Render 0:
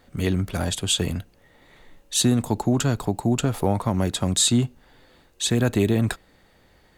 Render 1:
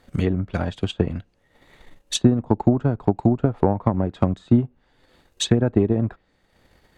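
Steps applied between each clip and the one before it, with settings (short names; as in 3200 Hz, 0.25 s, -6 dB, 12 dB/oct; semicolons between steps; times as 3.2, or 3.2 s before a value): treble ducked by the level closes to 1100 Hz, closed at -18 dBFS; transient shaper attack +8 dB, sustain -7 dB; gain -1 dB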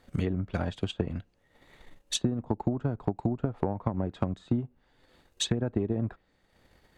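compressor 4:1, threshold -20 dBFS, peak gain reduction 9.5 dB; gain -4.5 dB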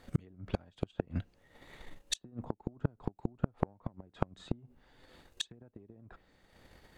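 flipped gate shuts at -21 dBFS, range -30 dB; gain +3 dB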